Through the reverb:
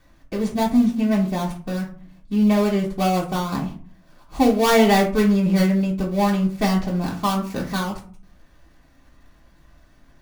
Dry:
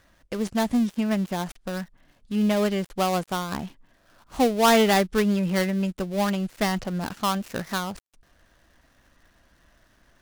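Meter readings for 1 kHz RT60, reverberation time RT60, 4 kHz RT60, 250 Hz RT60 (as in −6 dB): 0.45 s, 0.45 s, 0.25 s, 0.65 s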